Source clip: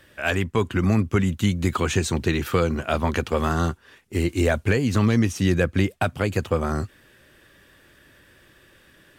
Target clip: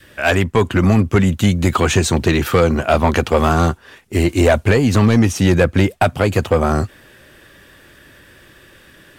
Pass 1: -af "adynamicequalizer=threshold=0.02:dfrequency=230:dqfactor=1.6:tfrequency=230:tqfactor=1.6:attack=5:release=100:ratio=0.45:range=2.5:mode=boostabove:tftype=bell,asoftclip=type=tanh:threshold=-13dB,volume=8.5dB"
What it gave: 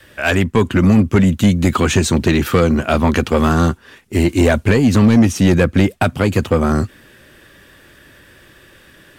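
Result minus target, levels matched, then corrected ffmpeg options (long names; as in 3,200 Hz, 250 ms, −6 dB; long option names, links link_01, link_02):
1,000 Hz band −3.0 dB
-af "adynamicequalizer=threshold=0.02:dfrequency=710:dqfactor=1.6:tfrequency=710:tqfactor=1.6:attack=5:release=100:ratio=0.45:range=2.5:mode=boostabove:tftype=bell,asoftclip=type=tanh:threshold=-13dB,volume=8.5dB"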